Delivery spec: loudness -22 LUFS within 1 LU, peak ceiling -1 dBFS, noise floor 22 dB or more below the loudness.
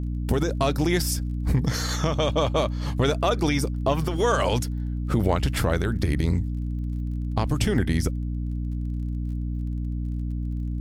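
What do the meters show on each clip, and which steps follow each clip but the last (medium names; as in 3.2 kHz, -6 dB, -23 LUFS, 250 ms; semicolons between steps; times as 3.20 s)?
tick rate 31 per s; hum 60 Hz; highest harmonic 300 Hz; hum level -25 dBFS; loudness -25.5 LUFS; peak level -9.5 dBFS; loudness target -22.0 LUFS
-> de-click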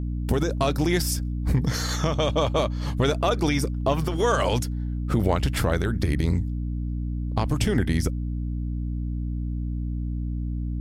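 tick rate 0.093 per s; hum 60 Hz; highest harmonic 300 Hz; hum level -25 dBFS
-> de-hum 60 Hz, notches 5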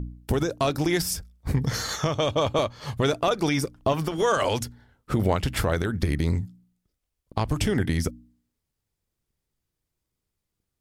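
hum not found; loudness -26.0 LUFS; peak level -11.0 dBFS; loudness target -22.0 LUFS
-> trim +4 dB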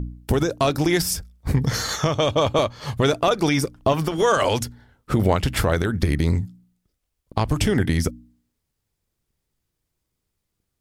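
loudness -22.0 LUFS; peak level -7.0 dBFS; noise floor -79 dBFS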